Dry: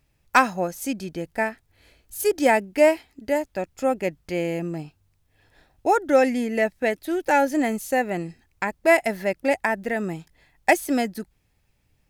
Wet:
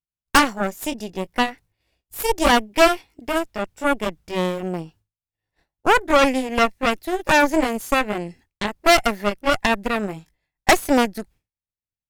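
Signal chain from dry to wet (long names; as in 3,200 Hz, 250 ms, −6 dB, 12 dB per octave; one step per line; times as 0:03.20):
pitch glide at a constant tempo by +2 semitones ending unshifted
downward expander −47 dBFS
harmonic generator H 8 −11 dB, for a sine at −3.5 dBFS
level +1 dB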